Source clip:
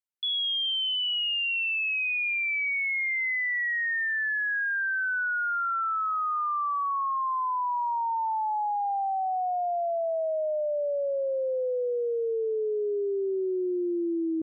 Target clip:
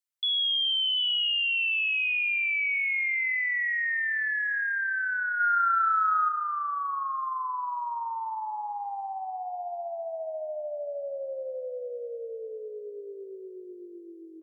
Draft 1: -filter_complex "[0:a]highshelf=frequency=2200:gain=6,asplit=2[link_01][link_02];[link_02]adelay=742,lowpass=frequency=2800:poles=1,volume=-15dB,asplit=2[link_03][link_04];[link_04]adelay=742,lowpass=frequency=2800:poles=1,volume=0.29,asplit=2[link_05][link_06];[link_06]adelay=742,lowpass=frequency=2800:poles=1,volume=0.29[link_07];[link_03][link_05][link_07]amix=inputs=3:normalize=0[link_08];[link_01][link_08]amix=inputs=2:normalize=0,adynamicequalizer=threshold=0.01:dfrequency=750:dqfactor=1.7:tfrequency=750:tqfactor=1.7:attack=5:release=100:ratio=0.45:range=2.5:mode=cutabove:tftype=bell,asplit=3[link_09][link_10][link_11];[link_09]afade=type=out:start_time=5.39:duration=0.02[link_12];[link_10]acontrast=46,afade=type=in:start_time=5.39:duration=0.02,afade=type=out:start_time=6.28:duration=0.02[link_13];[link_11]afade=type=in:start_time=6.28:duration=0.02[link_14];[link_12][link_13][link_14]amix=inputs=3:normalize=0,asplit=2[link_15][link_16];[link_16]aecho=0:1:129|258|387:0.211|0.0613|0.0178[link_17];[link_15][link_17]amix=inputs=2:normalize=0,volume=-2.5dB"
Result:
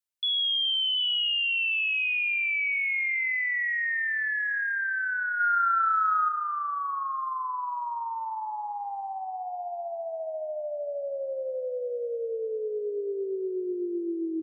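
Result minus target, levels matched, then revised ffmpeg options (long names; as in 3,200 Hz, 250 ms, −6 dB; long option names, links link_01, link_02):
500 Hz band +4.5 dB
-filter_complex "[0:a]highshelf=frequency=2200:gain=6,asplit=2[link_01][link_02];[link_02]adelay=742,lowpass=frequency=2800:poles=1,volume=-15dB,asplit=2[link_03][link_04];[link_04]adelay=742,lowpass=frequency=2800:poles=1,volume=0.29,asplit=2[link_05][link_06];[link_06]adelay=742,lowpass=frequency=2800:poles=1,volume=0.29[link_07];[link_03][link_05][link_07]amix=inputs=3:normalize=0[link_08];[link_01][link_08]amix=inputs=2:normalize=0,adynamicequalizer=threshold=0.01:dfrequency=750:dqfactor=1.7:tfrequency=750:tqfactor=1.7:attack=5:release=100:ratio=0.45:range=2.5:mode=cutabove:tftype=bell,highpass=frequency=520:width=0.5412,highpass=frequency=520:width=1.3066,asplit=3[link_09][link_10][link_11];[link_09]afade=type=out:start_time=5.39:duration=0.02[link_12];[link_10]acontrast=46,afade=type=in:start_time=5.39:duration=0.02,afade=type=out:start_time=6.28:duration=0.02[link_13];[link_11]afade=type=in:start_time=6.28:duration=0.02[link_14];[link_12][link_13][link_14]amix=inputs=3:normalize=0,asplit=2[link_15][link_16];[link_16]aecho=0:1:129|258|387:0.211|0.0613|0.0178[link_17];[link_15][link_17]amix=inputs=2:normalize=0,volume=-2.5dB"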